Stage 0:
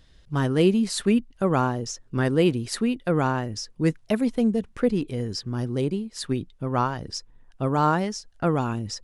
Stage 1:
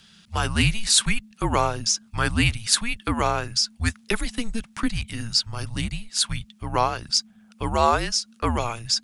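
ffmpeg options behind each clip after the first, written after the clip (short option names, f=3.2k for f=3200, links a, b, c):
-af "tiltshelf=f=1.2k:g=-8.5,afreqshift=-230,volume=4.5dB"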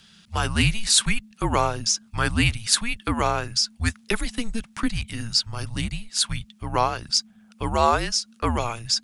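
-af anull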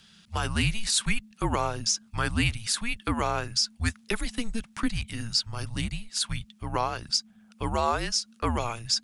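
-af "alimiter=limit=-10.5dB:level=0:latency=1:release=121,volume=-3dB"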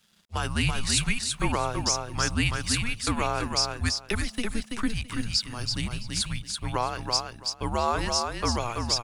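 -af "aeval=exprs='sgn(val(0))*max(abs(val(0))-0.00158,0)':c=same,aecho=1:1:332|664|996:0.596|0.107|0.0193"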